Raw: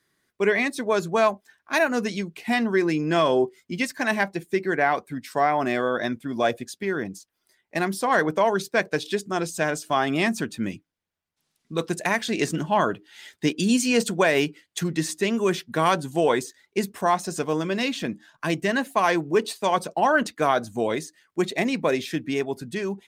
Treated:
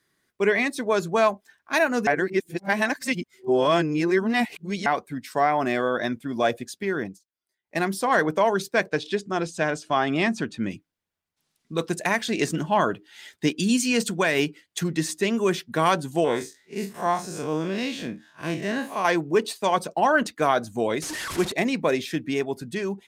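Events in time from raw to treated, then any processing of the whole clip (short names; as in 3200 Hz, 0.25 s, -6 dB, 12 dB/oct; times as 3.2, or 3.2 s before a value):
2.07–4.86 reverse
7.05–7.77 dip -17.5 dB, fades 0.14 s
8.88–10.71 Bessel low-pass 5300 Hz
13.5–14.39 bell 590 Hz -5 dB 1.4 oct
16.24–19.05 time blur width 91 ms
21.02–21.52 delta modulation 64 kbps, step -26 dBFS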